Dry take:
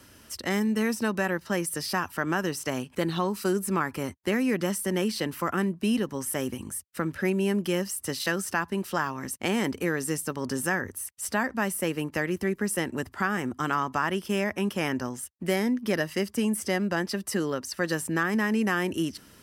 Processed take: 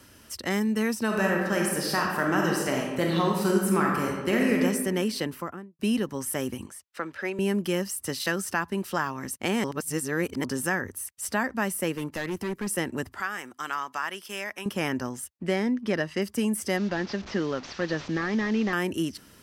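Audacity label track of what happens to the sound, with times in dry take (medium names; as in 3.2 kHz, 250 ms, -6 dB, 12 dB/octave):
1.050000	4.580000	reverb throw, RT60 1.3 s, DRR -1 dB
5.180000	5.790000	studio fade out
6.660000	7.390000	three-band isolator lows -16 dB, under 380 Hz, highs -13 dB, over 6.3 kHz
9.640000	10.440000	reverse
11.950000	12.670000	hard clipper -26.5 dBFS
13.200000	14.660000	high-pass 1.4 kHz 6 dB/octave
15.370000	16.220000	distance through air 74 m
16.770000	18.730000	one-bit delta coder 32 kbps, step -37.5 dBFS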